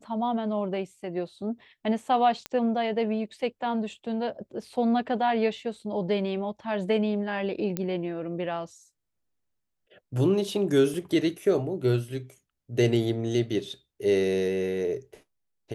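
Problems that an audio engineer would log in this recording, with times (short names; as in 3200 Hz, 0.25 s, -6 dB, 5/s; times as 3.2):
2.46 pop -17 dBFS
7.77 pop -14 dBFS
10.94 gap 2.9 ms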